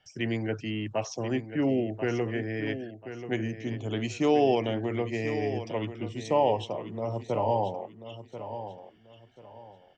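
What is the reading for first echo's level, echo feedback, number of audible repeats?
−11.0 dB, 28%, 3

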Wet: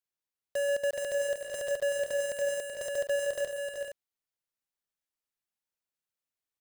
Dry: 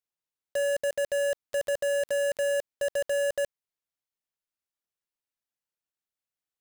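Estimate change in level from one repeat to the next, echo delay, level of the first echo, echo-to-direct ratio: repeats not evenly spaced, 134 ms, −12.0 dB, −3.5 dB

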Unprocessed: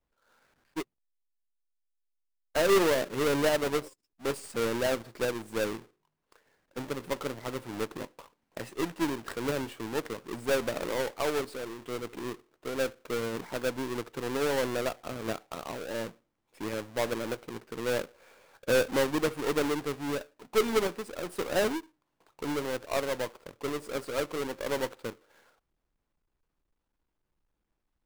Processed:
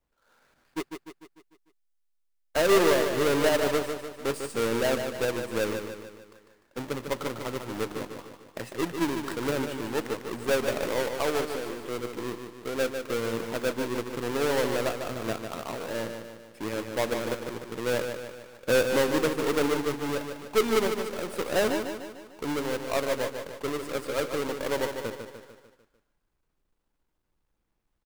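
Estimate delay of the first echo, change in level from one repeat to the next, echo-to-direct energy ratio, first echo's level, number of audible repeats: 149 ms, −5.5 dB, −5.5 dB, −7.0 dB, 5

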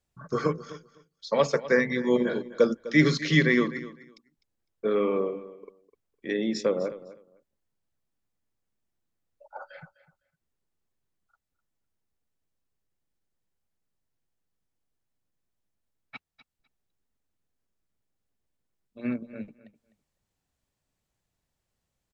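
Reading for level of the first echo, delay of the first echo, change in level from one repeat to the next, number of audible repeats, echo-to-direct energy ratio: −16.5 dB, 253 ms, −15.5 dB, 2, −16.5 dB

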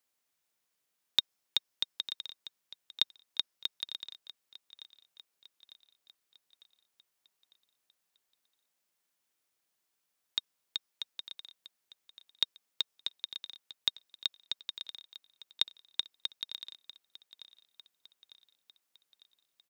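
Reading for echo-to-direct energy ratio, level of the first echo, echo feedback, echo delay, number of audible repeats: −15.5 dB, −17.0 dB, 53%, 901 ms, 4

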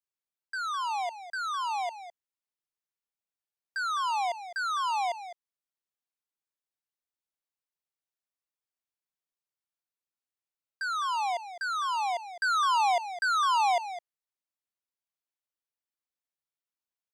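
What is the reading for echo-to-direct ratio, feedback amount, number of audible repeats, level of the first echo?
−12.5 dB, repeats not evenly spaced, 1, −12.5 dB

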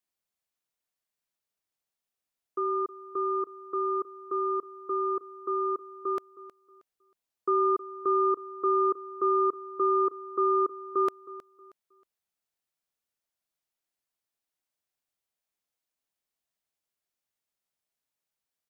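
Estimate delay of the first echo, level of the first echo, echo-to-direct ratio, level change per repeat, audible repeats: 316 ms, −17.0 dB, −16.5 dB, −10.5 dB, 2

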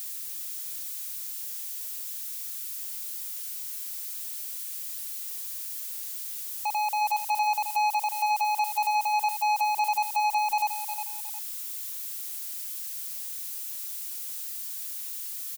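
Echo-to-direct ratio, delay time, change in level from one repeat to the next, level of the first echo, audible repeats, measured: −8.5 dB, 359 ms, −9.5 dB, −9.0 dB, 2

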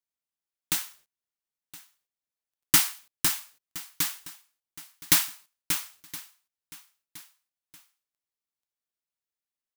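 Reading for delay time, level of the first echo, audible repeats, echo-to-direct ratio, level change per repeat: 1,018 ms, −19.0 dB, 2, −18.0 dB, −6.5 dB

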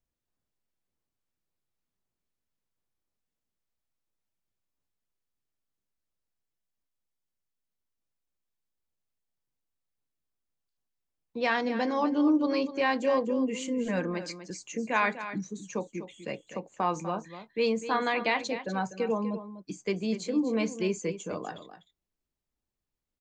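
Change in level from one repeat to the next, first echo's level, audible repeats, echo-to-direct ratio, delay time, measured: repeats not evenly spaced, −12.0 dB, 1, −12.0 dB, 247 ms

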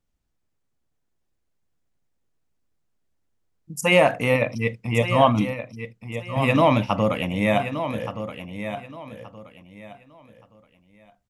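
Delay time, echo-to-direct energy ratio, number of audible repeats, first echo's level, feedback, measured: 1,174 ms, −9.5 dB, 3, −10.0 dB, 26%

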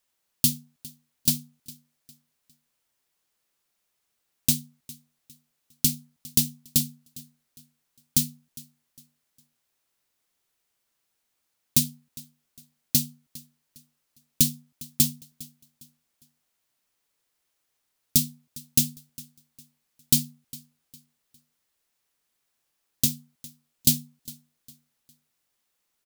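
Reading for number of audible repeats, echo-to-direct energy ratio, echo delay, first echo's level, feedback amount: 2, −20.5 dB, 406 ms, −21.0 dB, 34%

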